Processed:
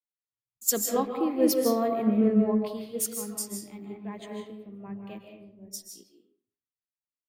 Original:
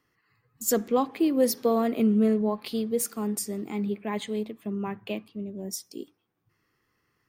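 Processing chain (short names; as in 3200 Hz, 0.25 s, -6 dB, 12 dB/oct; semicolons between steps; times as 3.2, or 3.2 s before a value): digital reverb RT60 0.8 s, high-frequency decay 0.65×, pre-delay 0.11 s, DRR 0 dB; three-band expander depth 100%; gain -5 dB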